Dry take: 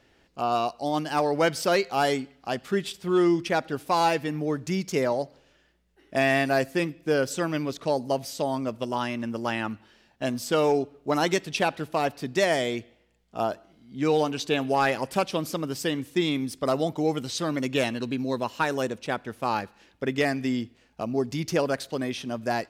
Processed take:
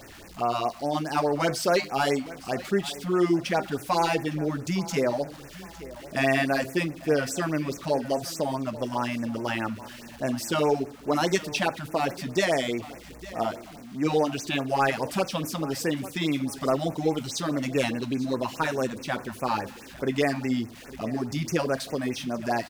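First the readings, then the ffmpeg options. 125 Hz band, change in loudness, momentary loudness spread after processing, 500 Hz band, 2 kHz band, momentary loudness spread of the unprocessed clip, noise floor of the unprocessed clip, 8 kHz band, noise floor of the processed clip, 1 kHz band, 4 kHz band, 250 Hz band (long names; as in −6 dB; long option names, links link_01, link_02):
+1.0 dB, −0.5 dB, 8 LU, −1.0 dB, −0.5 dB, 8 LU, −63 dBFS, +1.5 dB, −45 dBFS, −1.0 dB, −0.5 dB, 0.0 dB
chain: -filter_complex "[0:a]aeval=exprs='val(0)+0.5*0.00891*sgn(val(0))':channel_layout=same,flanger=delay=9.3:depth=3.8:regen=-73:speed=0.34:shape=sinusoidal,asplit=2[link_01][link_02];[link_02]aecho=0:1:858|1716|2574:0.133|0.0467|0.0163[link_03];[link_01][link_03]amix=inputs=2:normalize=0,afftfilt=real='re*(1-between(b*sr/1024,360*pow(4000/360,0.5+0.5*sin(2*PI*4.8*pts/sr))/1.41,360*pow(4000/360,0.5+0.5*sin(2*PI*4.8*pts/sr))*1.41))':imag='im*(1-between(b*sr/1024,360*pow(4000/360,0.5+0.5*sin(2*PI*4.8*pts/sr))/1.41,360*pow(4000/360,0.5+0.5*sin(2*PI*4.8*pts/sr))*1.41))':win_size=1024:overlap=0.75,volume=4.5dB"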